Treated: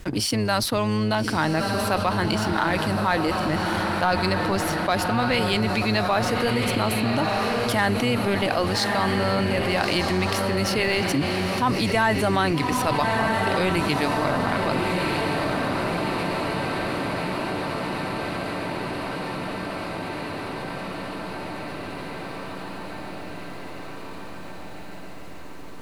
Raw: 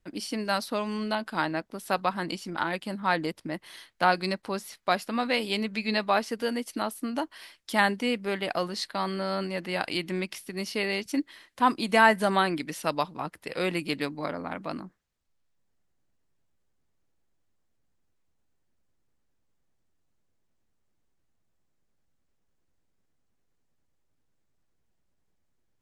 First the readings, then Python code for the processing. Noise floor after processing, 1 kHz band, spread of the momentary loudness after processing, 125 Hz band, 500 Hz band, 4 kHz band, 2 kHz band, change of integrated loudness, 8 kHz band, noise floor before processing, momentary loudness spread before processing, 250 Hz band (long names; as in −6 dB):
−35 dBFS, +5.5 dB, 14 LU, +14.0 dB, +7.0 dB, +7.5 dB, +5.5 dB, +5.0 dB, +9.5 dB, −73 dBFS, 11 LU, +7.5 dB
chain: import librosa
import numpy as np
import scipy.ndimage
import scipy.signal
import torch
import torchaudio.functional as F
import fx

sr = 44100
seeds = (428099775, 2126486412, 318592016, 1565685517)

y = fx.octave_divider(x, sr, octaves=1, level_db=-3.0)
y = fx.leveller(y, sr, passes=1)
y = fx.echo_diffused(y, sr, ms=1251, feedback_pct=49, wet_db=-6.5)
y = fx.env_flatten(y, sr, amount_pct=70)
y = y * 10.0 ** (-5.5 / 20.0)